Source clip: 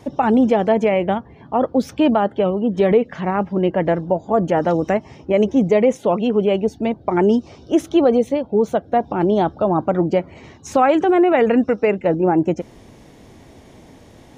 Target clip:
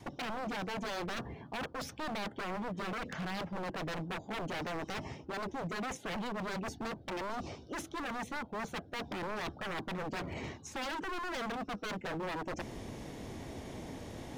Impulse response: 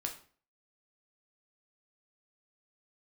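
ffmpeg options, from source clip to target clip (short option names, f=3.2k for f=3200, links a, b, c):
-af "adynamicequalizer=threshold=0.0355:dfrequency=520:dqfactor=3.5:tfrequency=520:tqfactor=3.5:attack=5:release=100:ratio=0.375:range=1.5:mode=cutabove:tftype=bell,areverse,acompressor=threshold=-27dB:ratio=16,areverse,aeval=exprs='0.0224*(abs(mod(val(0)/0.0224+3,4)-2)-1)':c=same"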